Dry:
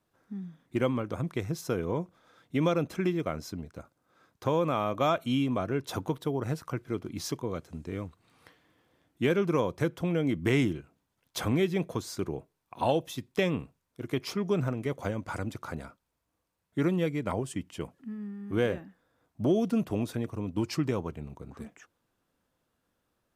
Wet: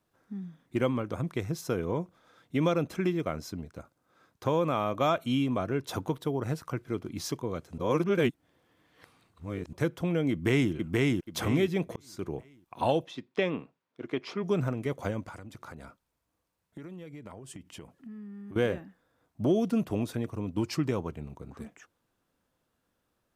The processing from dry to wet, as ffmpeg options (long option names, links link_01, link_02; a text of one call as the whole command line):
ffmpeg -i in.wav -filter_complex "[0:a]asplit=2[link_01][link_02];[link_02]afade=type=in:start_time=10.31:duration=0.01,afade=type=out:start_time=10.72:duration=0.01,aecho=0:1:480|960|1440|1920:0.891251|0.267375|0.0802126|0.0240638[link_03];[link_01][link_03]amix=inputs=2:normalize=0,asplit=3[link_04][link_05][link_06];[link_04]afade=type=out:start_time=13.04:duration=0.02[link_07];[link_05]highpass=220,lowpass=3600,afade=type=in:start_time=13.04:duration=0.02,afade=type=out:start_time=14.42:duration=0.02[link_08];[link_06]afade=type=in:start_time=14.42:duration=0.02[link_09];[link_07][link_08][link_09]amix=inputs=3:normalize=0,asettb=1/sr,asplit=3[link_10][link_11][link_12];[link_10]atrim=end=15.284[link_13];[link_11]atrim=start=15.28:end=18.56,asetpts=PTS-STARTPTS,afade=type=in:duration=0.004:curve=qsin,afade=type=out:start_time=3.276:duration=0.004:curve=qsin,acompressor=threshold=-40dB:ratio=12:attack=3.2:release=140:knee=1:detection=peak[link_14];[link_12]atrim=start=18.556[link_15];[link_13][link_14]acrossfade=duration=0.004:curve1=hsin:curve2=qsin[link_16];[link_16][link_15]acrossfade=duration=0.004:curve1=qsin:curve2=hsin,asplit=4[link_17][link_18][link_19][link_20];[link_17]atrim=end=7.782[link_21];[link_18]atrim=start=7.778:end=9.732,asetpts=PTS-STARTPTS,areverse[link_22];[link_19]atrim=start=9.728:end=11.96,asetpts=PTS-STARTPTS,afade=type=out:start_time=2.228:duration=0.004:curve=hsin[link_23];[link_20]atrim=start=11.96,asetpts=PTS-STARTPTS,afade=type=in:duration=0.4[link_24];[link_21][link_22]acrossfade=duration=0.004:curve1=hsin:curve2=hsin[link_25];[link_23][link_24]concat=n=2:v=0:a=1[link_26];[link_25][link_26]acrossfade=duration=0.004:curve1=hsin:curve2=hsin" out.wav